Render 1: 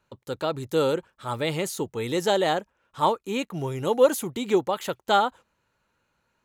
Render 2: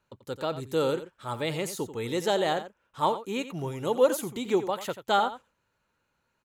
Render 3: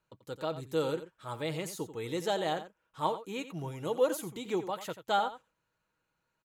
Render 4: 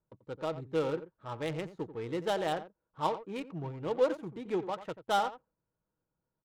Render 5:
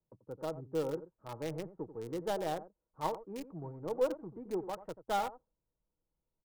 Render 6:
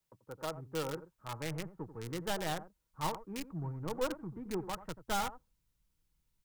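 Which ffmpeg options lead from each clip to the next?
ffmpeg -i in.wav -af "aecho=1:1:88:0.237,volume=-3.5dB" out.wav
ffmpeg -i in.wav -af "aecho=1:1:6.3:0.35,volume=-6dB" out.wav
ffmpeg -i in.wav -af "adynamicsmooth=sensitivity=8:basefreq=730" out.wav
ffmpeg -i in.wav -filter_complex "[0:a]asubboost=boost=4.5:cutoff=55,acrossover=split=130|1200[link_01][link_02][link_03];[link_03]acrusher=bits=4:dc=4:mix=0:aa=0.000001[link_04];[link_01][link_02][link_04]amix=inputs=3:normalize=0,volume=-3dB" out.wav
ffmpeg -i in.wav -filter_complex "[0:a]asubboost=boost=5.5:cutoff=230,acrossover=split=1100[link_01][link_02];[link_02]aeval=exprs='0.0376*sin(PI/2*3.55*val(0)/0.0376)':channel_layout=same[link_03];[link_01][link_03]amix=inputs=2:normalize=0,volume=-4dB" out.wav

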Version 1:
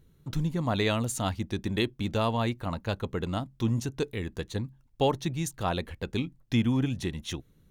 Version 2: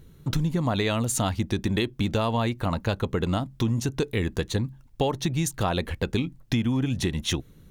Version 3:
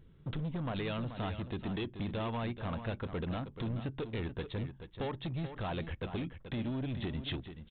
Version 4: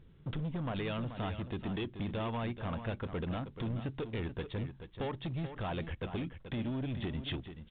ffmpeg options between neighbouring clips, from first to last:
ffmpeg -i in.wav -filter_complex "[0:a]asplit=2[link_01][link_02];[link_02]alimiter=limit=-22.5dB:level=0:latency=1:release=165,volume=0dB[link_03];[link_01][link_03]amix=inputs=2:normalize=0,acompressor=threshold=-25dB:ratio=6,volume=4dB" out.wav
ffmpeg -i in.wav -af "aresample=8000,asoftclip=type=hard:threshold=-24.5dB,aresample=44100,aecho=1:1:432:0.316,volume=-8.5dB" out.wav
ffmpeg -i in.wav -ar 8000 -c:a pcm_mulaw out.wav

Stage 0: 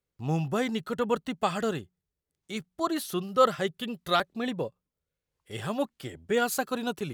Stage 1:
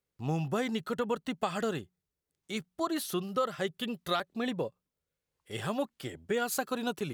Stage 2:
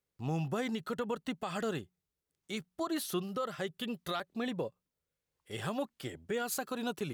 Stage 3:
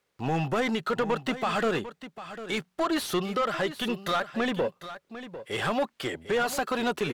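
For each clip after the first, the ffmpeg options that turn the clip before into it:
ffmpeg -i in.wav -af "lowshelf=frequency=90:gain=-6,acompressor=threshold=-27dB:ratio=5" out.wav
ffmpeg -i in.wav -af "alimiter=limit=-24dB:level=0:latency=1:release=70,volume=-1.5dB" out.wav
ffmpeg -i in.wav -filter_complex "[0:a]asplit=2[link_01][link_02];[link_02]highpass=frequency=720:poles=1,volume=17dB,asoftclip=type=tanh:threshold=-25dB[link_03];[link_01][link_03]amix=inputs=2:normalize=0,lowpass=frequency=2400:poles=1,volume=-6dB,aecho=1:1:749:0.224,volume=6.5dB" out.wav

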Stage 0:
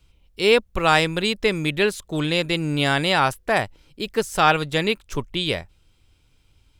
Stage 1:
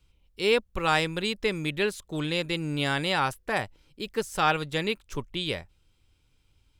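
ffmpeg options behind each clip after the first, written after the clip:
ffmpeg -i in.wav -af "bandreject=frequency=670:width=12,volume=-6.5dB" out.wav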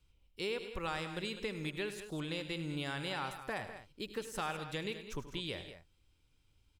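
ffmpeg -i in.wav -af "acompressor=threshold=-30dB:ratio=4,aecho=1:1:78|102|165|201:0.158|0.211|0.141|0.251,volume=-6dB" out.wav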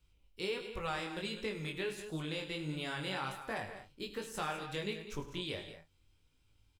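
ffmpeg -i in.wav -filter_complex "[0:a]flanger=delay=18.5:depth=3.6:speed=1.4,asplit=2[link_01][link_02];[link_02]adelay=31,volume=-11.5dB[link_03];[link_01][link_03]amix=inputs=2:normalize=0,volume=3dB" out.wav

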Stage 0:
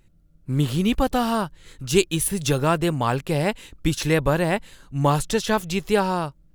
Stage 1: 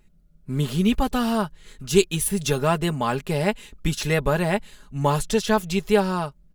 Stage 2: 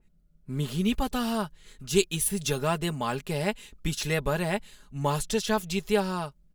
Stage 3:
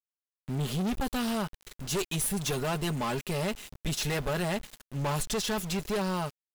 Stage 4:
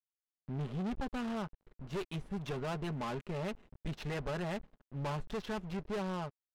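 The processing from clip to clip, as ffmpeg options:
ffmpeg -i in.wav -af "aecho=1:1:4.8:0.59,volume=-2dB" out.wav
ffmpeg -i in.wav -af "adynamicequalizer=threshold=0.0178:dfrequency=2400:dqfactor=0.7:tfrequency=2400:tqfactor=0.7:attack=5:release=100:ratio=0.375:range=2:mode=boostabove:tftype=highshelf,volume=-6dB" out.wav
ffmpeg -i in.wav -af "aeval=exprs='val(0)*gte(abs(val(0)),0.00596)':channel_layout=same,aeval=exprs='(tanh(39.8*val(0)+0.2)-tanh(0.2))/39.8':channel_layout=same,volume=5dB" out.wav
ffmpeg -i in.wav -af "adynamicsmooth=sensitivity=4.5:basefreq=610,volume=-6.5dB" out.wav

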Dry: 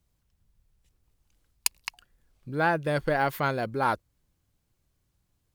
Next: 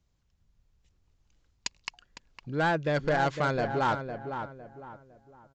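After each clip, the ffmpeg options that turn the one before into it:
ffmpeg -i in.wav -filter_complex "[0:a]aresample=16000,asoftclip=type=hard:threshold=-21dB,aresample=44100,asplit=2[link_01][link_02];[link_02]adelay=507,lowpass=frequency=1700:poles=1,volume=-7.5dB,asplit=2[link_03][link_04];[link_04]adelay=507,lowpass=frequency=1700:poles=1,volume=0.35,asplit=2[link_05][link_06];[link_06]adelay=507,lowpass=frequency=1700:poles=1,volume=0.35,asplit=2[link_07][link_08];[link_08]adelay=507,lowpass=frequency=1700:poles=1,volume=0.35[link_09];[link_01][link_03][link_05][link_07][link_09]amix=inputs=5:normalize=0" out.wav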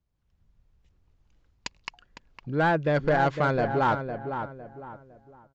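ffmpeg -i in.wav -af "lowpass=frequency=2200:poles=1,dynaudnorm=framelen=100:gausssize=5:maxgain=10dB,volume=-6dB" out.wav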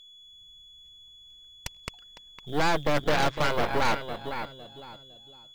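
ffmpeg -i in.wav -af "aeval=exprs='val(0)+0.00562*sin(2*PI*3400*n/s)':channel_layout=same,aeval=exprs='0.211*(cos(1*acos(clip(val(0)/0.211,-1,1)))-cos(1*PI/2))+0.0944*(cos(6*acos(clip(val(0)/0.211,-1,1)))-cos(6*PI/2))+0.0168*(cos(8*acos(clip(val(0)/0.211,-1,1)))-cos(8*PI/2))':channel_layout=same,acrusher=bits=7:mode=log:mix=0:aa=0.000001,volume=-4dB" out.wav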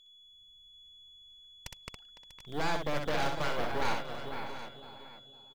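ffmpeg -i in.wav -af "aecho=1:1:63|643|740:0.562|0.188|0.237,volume=-8.5dB" out.wav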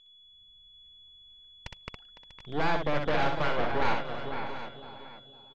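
ffmpeg -i in.wav -af "lowpass=3300,volume=4.5dB" out.wav

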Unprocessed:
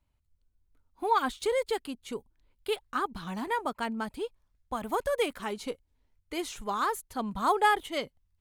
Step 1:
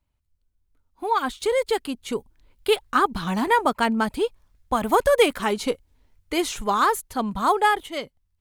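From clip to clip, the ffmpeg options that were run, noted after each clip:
ffmpeg -i in.wav -af "dynaudnorm=framelen=300:gausssize=11:maxgain=11.5dB" out.wav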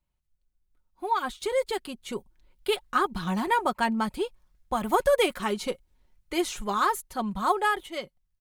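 ffmpeg -i in.wav -af "aecho=1:1:5.5:0.48,volume=-5.5dB" out.wav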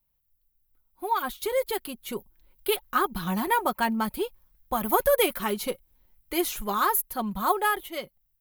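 ffmpeg -i in.wav -af "aexciter=amount=9:drive=4.5:freq=11000" out.wav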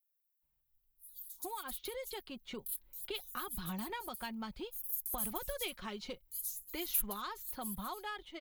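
ffmpeg -i in.wav -filter_complex "[0:a]acrossover=split=130|3000[link_01][link_02][link_03];[link_02]acompressor=threshold=-36dB:ratio=6[link_04];[link_01][link_04][link_03]amix=inputs=3:normalize=0,acrossover=split=5900[link_05][link_06];[link_05]adelay=420[link_07];[link_07][link_06]amix=inputs=2:normalize=0,volume=-6dB" out.wav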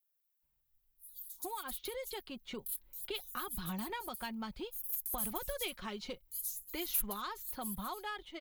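ffmpeg -i in.wav -af "asoftclip=type=tanh:threshold=-23.5dB,volume=1dB" out.wav

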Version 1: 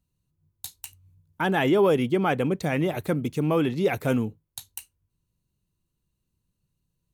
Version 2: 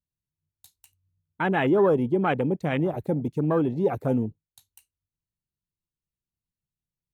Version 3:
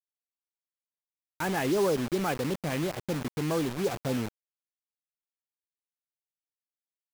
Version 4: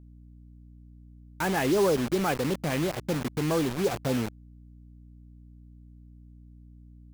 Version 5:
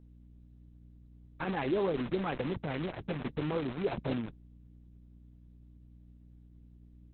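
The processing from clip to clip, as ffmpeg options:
ffmpeg -i in.wav -af "afwtdn=0.0355" out.wav
ffmpeg -i in.wav -af "acrusher=bits=4:mix=0:aa=0.000001,volume=-6dB" out.wav
ffmpeg -i in.wav -af "aeval=exprs='val(0)+0.00282*(sin(2*PI*60*n/s)+sin(2*PI*2*60*n/s)/2+sin(2*PI*3*60*n/s)/3+sin(2*PI*4*60*n/s)/4+sin(2*PI*5*60*n/s)/5)':channel_layout=same,volume=2.5dB" out.wav
ffmpeg -i in.wav -filter_complex "[0:a]acrossover=split=4600[link_01][link_02];[link_02]acompressor=threshold=-51dB:ratio=4:attack=1:release=60[link_03];[link_01][link_03]amix=inputs=2:normalize=0,volume=-5dB" -ar 48000 -c:a libopus -b:a 6k out.opus

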